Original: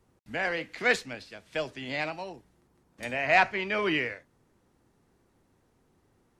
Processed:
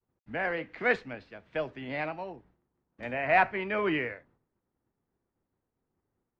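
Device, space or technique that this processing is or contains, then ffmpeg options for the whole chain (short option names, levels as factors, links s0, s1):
hearing-loss simulation: -af "lowpass=2000,agate=range=0.0224:threshold=0.00141:ratio=3:detection=peak"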